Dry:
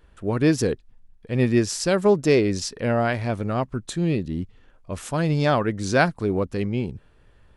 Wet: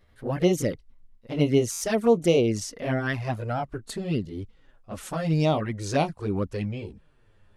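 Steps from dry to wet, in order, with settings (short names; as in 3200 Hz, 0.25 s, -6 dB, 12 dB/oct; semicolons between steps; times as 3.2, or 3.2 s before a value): gliding pitch shift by +3 st ending unshifted; envelope flanger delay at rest 10.4 ms, full sweep at -16.5 dBFS; stuck buffer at 1.71, samples 512, times 8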